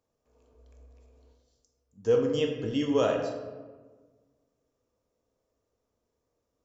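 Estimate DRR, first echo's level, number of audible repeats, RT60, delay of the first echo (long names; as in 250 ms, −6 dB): 2.0 dB, no echo audible, no echo audible, 1.4 s, no echo audible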